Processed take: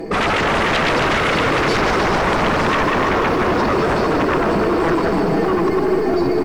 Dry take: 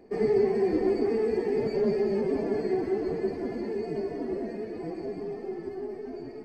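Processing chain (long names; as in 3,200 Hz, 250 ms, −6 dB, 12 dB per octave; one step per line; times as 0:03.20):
comb filter 6.1 ms, depth 75%
in parallel at −3 dB: downward compressor, threshold −34 dBFS, peak gain reduction 15 dB
on the sum: sine wavefolder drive 19 dB, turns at −11 dBFS
feedback echo at a low word length 152 ms, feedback 80%, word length 7 bits, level −10 dB
level −3.5 dB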